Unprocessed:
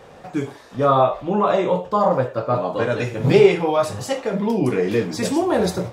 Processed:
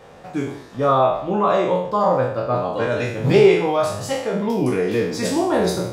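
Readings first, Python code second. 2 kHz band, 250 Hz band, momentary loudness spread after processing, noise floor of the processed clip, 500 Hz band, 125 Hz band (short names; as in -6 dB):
+1.0 dB, 0.0 dB, 10 LU, -42 dBFS, +0.5 dB, -0.5 dB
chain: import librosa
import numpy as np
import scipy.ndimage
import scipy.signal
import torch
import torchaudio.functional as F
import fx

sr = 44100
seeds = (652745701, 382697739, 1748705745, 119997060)

y = fx.spec_trails(x, sr, decay_s=0.67)
y = F.gain(torch.from_numpy(y), -2.0).numpy()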